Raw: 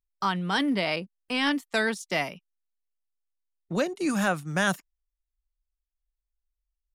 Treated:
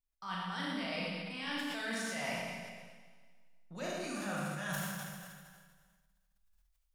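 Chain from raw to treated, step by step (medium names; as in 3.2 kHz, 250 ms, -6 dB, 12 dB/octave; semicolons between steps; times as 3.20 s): peaking EQ 340 Hz -12 dB 0.8 oct; reverse; compression 12:1, threshold -40 dBFS, peak gain reduction 19.5 dB; reverse; Schroeder reverb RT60 1.7 s, combs from 27 ms, DRR -5.5 dB; decay stretcher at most 30 dB/s; trim -1 dB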